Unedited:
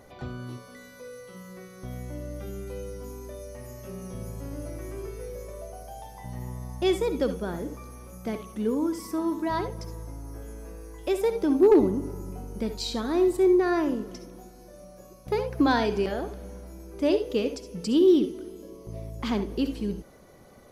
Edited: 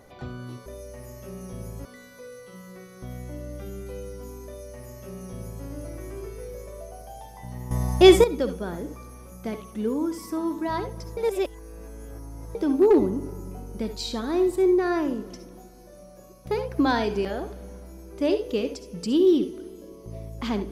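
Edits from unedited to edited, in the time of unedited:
3.27–4.46 copy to 0.66
6.52–7.05 gain +11.5 dB
9.98–11.36 reverse

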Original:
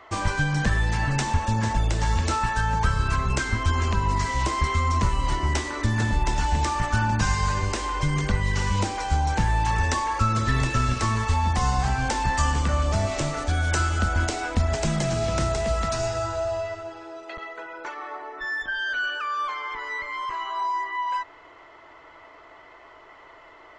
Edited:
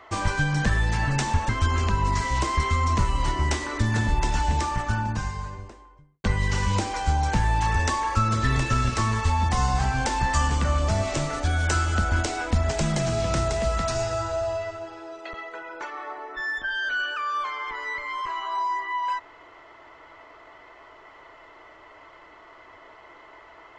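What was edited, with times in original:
1.49–3.53 cut
6.33–8.28 studio fade out

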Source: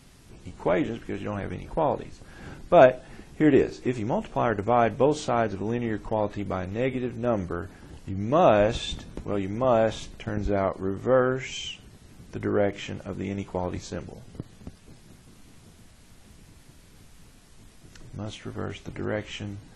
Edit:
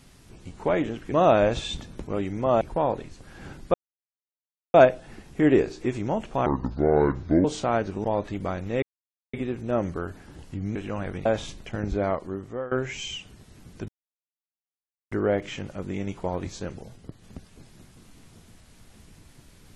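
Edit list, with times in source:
1.12–1.62 swap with 8.3–9.79
2.75 insert silence 1.00 s
4.47–5.09 speed 63%
5.69–6.1 cut
6.88 insert silence 0.51 s
10.36–11.25 fade out equal-power, to -20.5 dB
12.42 insert silence 1.23 s
14.27–14.54 gain -4 dB

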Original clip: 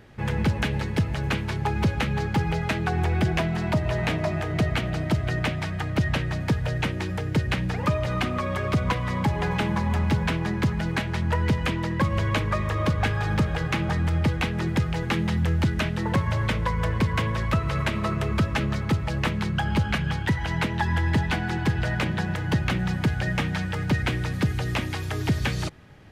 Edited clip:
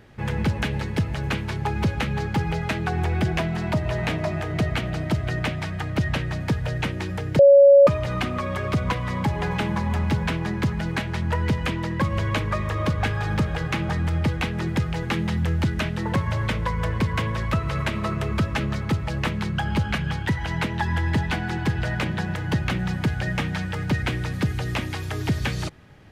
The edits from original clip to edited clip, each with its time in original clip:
7.39–7.87 bleep 560 Hz -8 dBFS

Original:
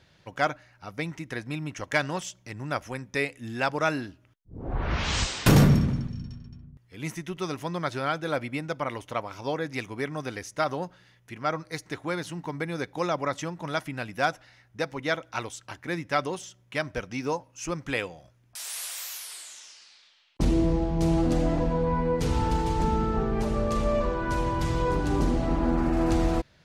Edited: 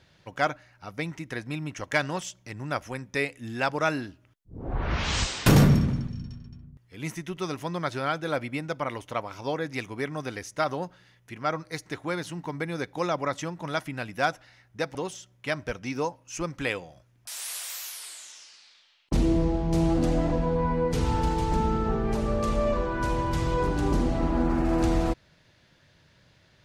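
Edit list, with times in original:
14.95–16.23 cut

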